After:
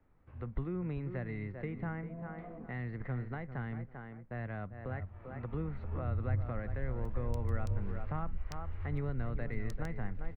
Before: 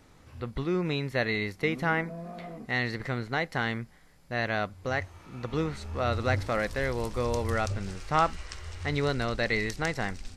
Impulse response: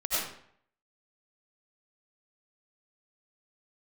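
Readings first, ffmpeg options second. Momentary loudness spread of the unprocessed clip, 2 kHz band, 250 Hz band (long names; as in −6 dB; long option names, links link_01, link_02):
10 LU, −17.0 dB, −8.0 dB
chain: -filter_complex "[0:a]agate=range=-10dB:threshold=-52dB:ratio=16:detection=peak,lowshelf=frequency=62:gain=9.5,asplit=2[link_01][link_02];[link_02]adelay=393,lowpass=frequency=1600:poles=1,volume=-10.5dB,asplit=2[link_03][link_04];[link_04]adelay=393,lowpass=frequency=1600:poles=1,volume=0.18[link_05];[link_01][link_03][link_05]amix=inputs=3:normalize=0,acrossover=split=210[link_06][link_07];[link_07]acompressor=threshold=-38dB:ratio=3[link_08];[link_06][link_08]amix=inputs=2:normalize=0,acrossover=split=170|2300[link_09][link_10][link_11];[link_11]acrusher=bits=4:mix=0:aa=0.5[link_12];[link_09][link_10][link_12]amix=inputs=3:normalize=0,volume=-5dB"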